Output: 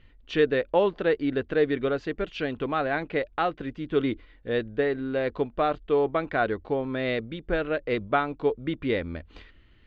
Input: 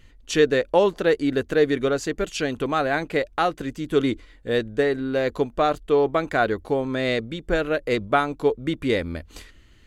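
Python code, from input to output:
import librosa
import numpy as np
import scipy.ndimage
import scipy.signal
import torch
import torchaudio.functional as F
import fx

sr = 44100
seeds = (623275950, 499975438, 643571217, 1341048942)

y = scipy.signal.sosfilt(scipy.signal.butter(4, 3600.0, 'lowpass', fs=sr, output='sos'), x)
y = F.gain(torch.from_numpy(y), -4.0).numpy()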